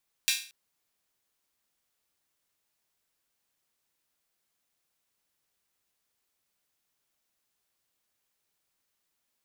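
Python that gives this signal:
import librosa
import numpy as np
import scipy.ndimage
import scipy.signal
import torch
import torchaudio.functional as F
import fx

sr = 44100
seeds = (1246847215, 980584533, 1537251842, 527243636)

y = fx.drum_hat_open(sr, length_s=0.23, from_hz=2700.0, decay_s=0.4)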